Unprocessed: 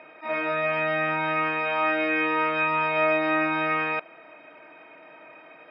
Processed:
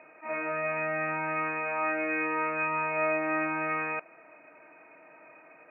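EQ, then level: brick-wall FIR low-pass 2.8 kHz; -5.5 dB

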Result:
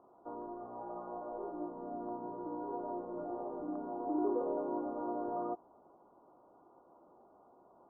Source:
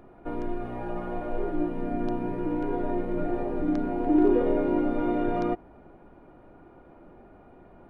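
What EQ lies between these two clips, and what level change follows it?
elliptic low-pass 1.1 kHz, stop band 50 dB; differentiator; +13.5 dB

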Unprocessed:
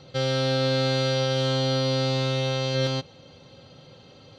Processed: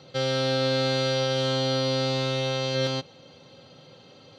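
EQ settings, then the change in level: Bessel high-pass 150 Hz; 0.0 dB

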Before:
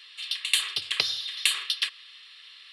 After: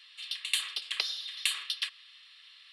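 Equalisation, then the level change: high-pass 530 Hz 12 dB/octave; -6.0 dB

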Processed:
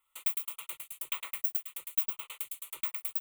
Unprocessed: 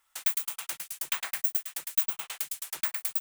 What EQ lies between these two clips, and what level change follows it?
static phaser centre 1.1 kHz, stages 8; -3.5 dB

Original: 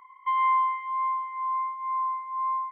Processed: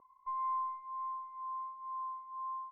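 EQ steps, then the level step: four-pole ladder low-pass 660 Hz, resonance 25%; +9.0 dB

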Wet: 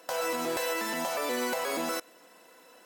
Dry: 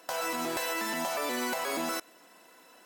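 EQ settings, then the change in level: peaking EQ 500 Hz +7.5 dB 0.21 oct; 0.0 dB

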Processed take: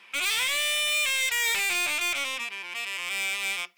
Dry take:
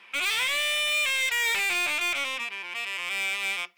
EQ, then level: tone controls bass +2 dB, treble +6 dB; -1.5 dB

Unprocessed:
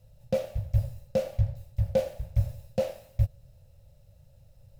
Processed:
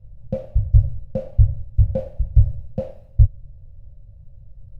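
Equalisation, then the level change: tilt EQ -4.5 dB/octave; -5.0 dB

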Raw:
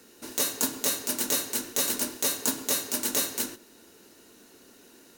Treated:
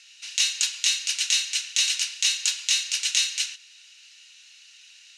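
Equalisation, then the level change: resonant high-pass 2.6 kHz, resonance Q 3.1; low-pass 6.5 kHz 24 dB/octave; tilt EQ +3 dB/octave; 0.0 dB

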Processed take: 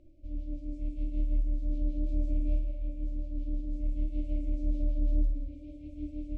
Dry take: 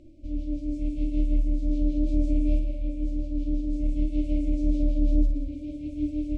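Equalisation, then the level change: peaking EQ 210 Hz -9.5 dB 1.7 oct; treble shelf 2 kHz -10 dB; dynamic bell 920 Hz, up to -5 dB, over -57 dBFS, Q 1.9; -4.0 dB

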